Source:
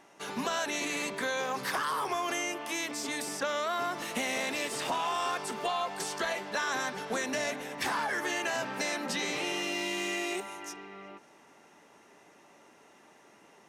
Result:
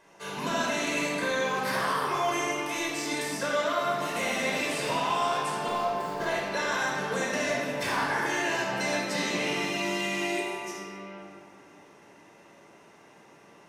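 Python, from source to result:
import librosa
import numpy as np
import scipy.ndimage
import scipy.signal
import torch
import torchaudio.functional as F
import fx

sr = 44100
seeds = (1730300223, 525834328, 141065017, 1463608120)

y = fx.median_filter(x, sr, points=15, at=(5.68, 6.26))
y = fx.room_shoebox(y, sr, seeds[0], volume_m3=2600.0, walls='mixed', distance_m=5.1)
y = y * 10.0 ** (-4.0 / 20.0)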